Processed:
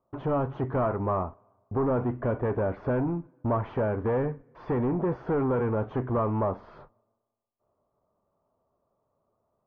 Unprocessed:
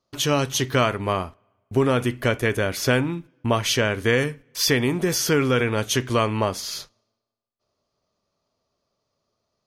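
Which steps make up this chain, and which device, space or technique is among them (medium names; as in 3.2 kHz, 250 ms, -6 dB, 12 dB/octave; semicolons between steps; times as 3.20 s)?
overdriven synthesiser ladder filter (saturation -23.5 dBFS, distortion -7 dB; four-pole ladder low-pass 1.2 kHz, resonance 35%); trim +8 dB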